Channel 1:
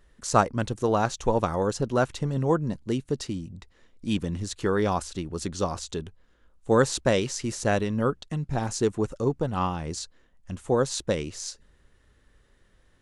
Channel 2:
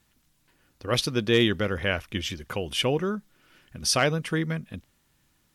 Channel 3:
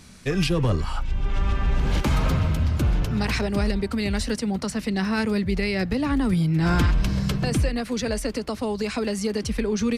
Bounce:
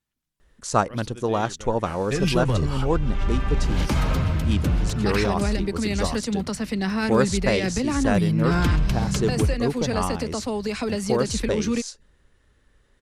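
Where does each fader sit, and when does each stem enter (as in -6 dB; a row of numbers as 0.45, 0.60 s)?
0.0, -17.0, -0.5 dB; 0.40, 0.00, 1.85 s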